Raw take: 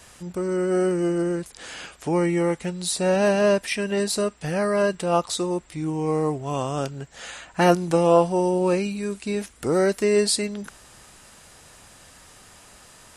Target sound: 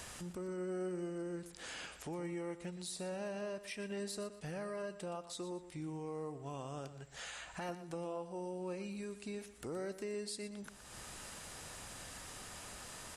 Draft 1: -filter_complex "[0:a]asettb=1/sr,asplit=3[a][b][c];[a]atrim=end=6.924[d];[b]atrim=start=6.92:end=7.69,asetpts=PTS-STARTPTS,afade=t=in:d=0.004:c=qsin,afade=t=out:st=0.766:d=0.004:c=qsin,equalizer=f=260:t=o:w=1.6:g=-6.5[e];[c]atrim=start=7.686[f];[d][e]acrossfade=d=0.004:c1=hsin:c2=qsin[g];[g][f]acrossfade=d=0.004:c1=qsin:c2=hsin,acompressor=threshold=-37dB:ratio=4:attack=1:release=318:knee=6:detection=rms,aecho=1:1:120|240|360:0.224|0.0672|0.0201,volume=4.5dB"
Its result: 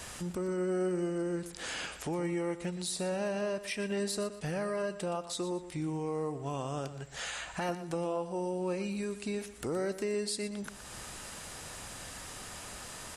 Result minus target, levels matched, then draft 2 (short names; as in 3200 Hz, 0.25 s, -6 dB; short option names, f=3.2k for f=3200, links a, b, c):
compressor: peak gain reduction -8 dB
-filter_complex "[0:a]asettb=1/sr,asplit=3[a][b][c];[a]atrim=end=6.924[d];[b]atrim=start=6.92:end=7.69,asetpts=PTS-STARTPTS,afade=t=in:d=0.004:c=qsin,afade=t=out:st=0.766:d=0.004:c=qsin,equalizer=f=260:t=o:w=1.6:g=-6.5[e];[c]atrim=start=7.686[f];[d][e]acrossfade=d=0.004:c1=hsin:c2=qsin[g];[g][f]acrossfade=d=0.004:c1=qsin:c2=hsin,acompressor=threshold=-48dB:ratio=4:attack=1:release=318:knee=6:detection=rms,aecho=1:1:120|240|360:0.224|0.0672|0.0201,volume=4.5dB"